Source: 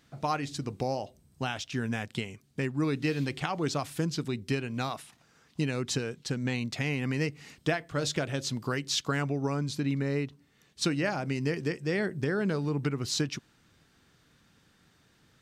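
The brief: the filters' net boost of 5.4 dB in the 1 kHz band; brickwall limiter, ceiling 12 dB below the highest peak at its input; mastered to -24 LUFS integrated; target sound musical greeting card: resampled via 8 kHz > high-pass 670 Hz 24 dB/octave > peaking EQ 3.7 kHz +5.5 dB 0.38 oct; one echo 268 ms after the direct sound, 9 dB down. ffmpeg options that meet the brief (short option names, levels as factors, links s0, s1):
-af "equalizer=f=1000:t=o:g=8,alimiter=limit=0.075:level=0:latency=1,aecho=1:1:268:0.355,aresample=8000,aresample=44100,highpass=f=670:w=0.5412,highpass=f=670:w=1.3066,equalizer=f=3700:t=o:w=0.38:g=5.5,volume=5.31"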